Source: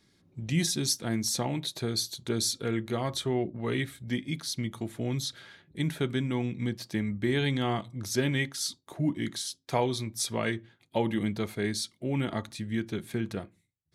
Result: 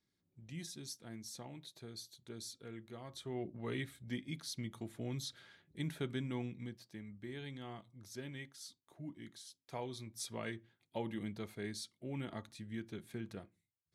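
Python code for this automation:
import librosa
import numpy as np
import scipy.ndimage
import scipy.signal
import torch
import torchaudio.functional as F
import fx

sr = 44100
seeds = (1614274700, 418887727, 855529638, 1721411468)

y = fx.gain(x, sr, db=fx.line((3.07, -19.0), (3.49, -10.0), (6.41, -10.0), (6.89, -19.0), (9.41, -19.0), (10.23, -12.5)))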